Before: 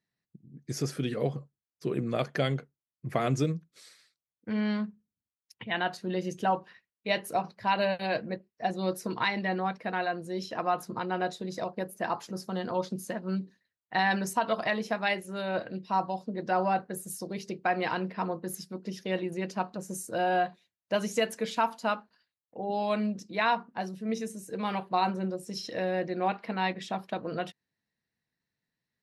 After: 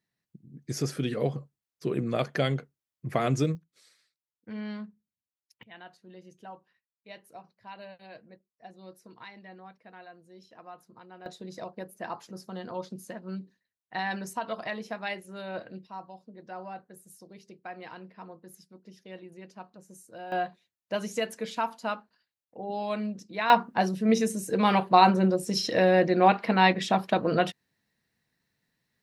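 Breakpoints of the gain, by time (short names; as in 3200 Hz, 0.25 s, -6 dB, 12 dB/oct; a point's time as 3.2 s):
+1.5 dB
from 3.55 s -7.5 dB
from 5.63 s -18 dB
from 11.26 s -5.5 dB
from 15.87 s -13.5 dB
from 20.32 s -2.5 dB
from 23.5 s +9 dB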